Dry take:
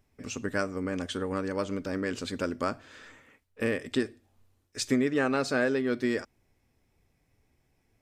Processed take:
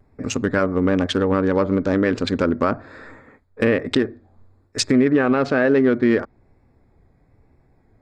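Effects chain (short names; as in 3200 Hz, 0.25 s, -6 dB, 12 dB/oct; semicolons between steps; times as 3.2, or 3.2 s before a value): Wiener smoothing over 15 samples; treble ducked by the level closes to 2500 Hz, closed at -26 dBFS; vibrato 1.1 Hz 44 cents; maximiser +21 dB; gain -7 dB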